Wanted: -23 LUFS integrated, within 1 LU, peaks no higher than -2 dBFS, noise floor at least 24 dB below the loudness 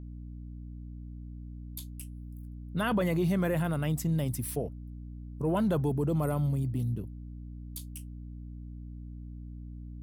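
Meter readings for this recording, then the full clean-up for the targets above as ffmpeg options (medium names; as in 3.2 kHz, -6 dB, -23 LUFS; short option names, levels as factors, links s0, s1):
hum 60 Hz; highest harmonic 300 Hz; hum level -40 dBFS; loudness -31.0 LUFS; peak level -18.0 dBFS; loudness target -23.0 LUFS
-> -af "bandreject=f=60:t=h:w=6,bandreject=f=120:t=h:w=6,bandreject=f=180:t=h:w=6,bandreject=f=240:t=h:w=6,bandreject=f=300:t=h:w=6"
-af "volume=2.51"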